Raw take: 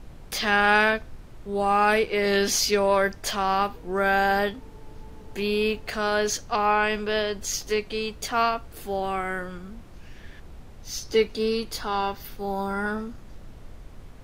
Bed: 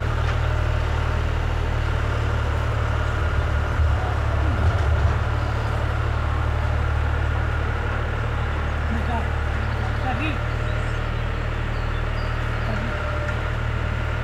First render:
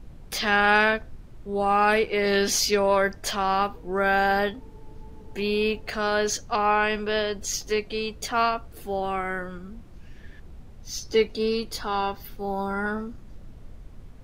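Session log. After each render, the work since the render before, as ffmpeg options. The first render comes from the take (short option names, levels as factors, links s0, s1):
-af "afftdn=nr=6:nf=-45"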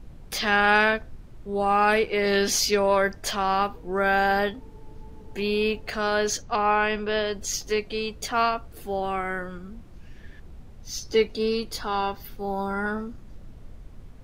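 -filter_complex "[0:a]asettb=1/sr,asplit=3[s0][s1][s2];[s0]atrim=end=6.424[s3];[s1]atrim=start=6.42:end=7.26,asetpts=PTS-STARTPTS,afade=t=in:d=0.004:c=qsin,afade=t=out:st=0.836:d=0.004:c=qsin,equalizer=f=12000:t=o:w=1:g=-13.5[s4];[s2]atrim=start=7.256[s5];[s3][s4]acrossfade=d=0.004:c1=hsin:c2=qsin[s6];[s6][s5]acrossfade=d=0.004:c1=qsin:c2=hsin"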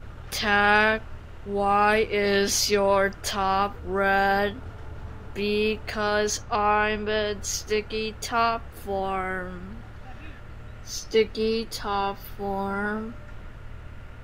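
-filter_complex "[1:a]volume=0.0944[s0];[0:a][s0]amix=inputs=2:normalize=0"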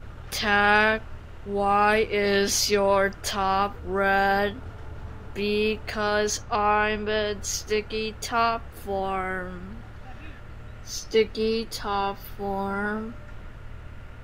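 -af anull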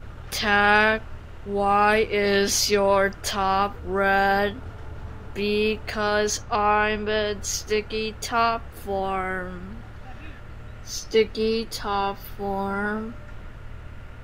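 -af "volume=1.19"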